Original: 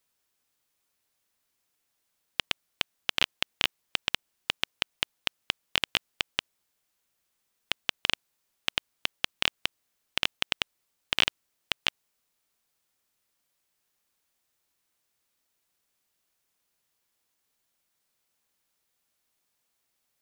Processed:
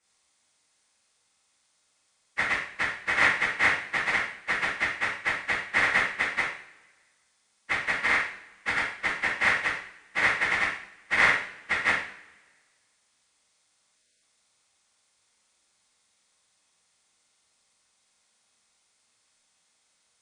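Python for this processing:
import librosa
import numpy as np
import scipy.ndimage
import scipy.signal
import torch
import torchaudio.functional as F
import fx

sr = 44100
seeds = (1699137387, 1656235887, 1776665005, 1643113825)

y = fx.partial_stretch(x, sr, pct=82)
y = fx.spec_erase(y, sr, start_s=13.94, length_s=0.28, low_hz=670.0, high_hz=1400.0)
y = fx.rev_double_slope(y, sr, seeds[0], early_s=0.54, late_s=1.6, knee_db=-21, drr_db=-8.0)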